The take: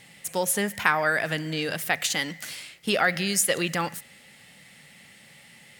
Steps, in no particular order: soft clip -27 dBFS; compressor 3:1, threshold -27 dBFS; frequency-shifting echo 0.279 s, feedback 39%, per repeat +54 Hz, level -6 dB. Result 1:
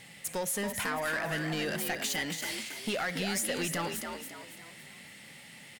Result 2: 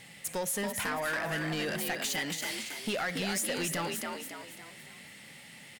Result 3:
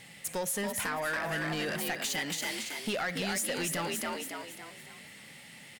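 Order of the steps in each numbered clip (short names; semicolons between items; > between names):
compressor > soft clip > frequency-shifting echo; compressor > frequency-shifting echo > soft clip; frequency-shifting echo > compressor > soft clip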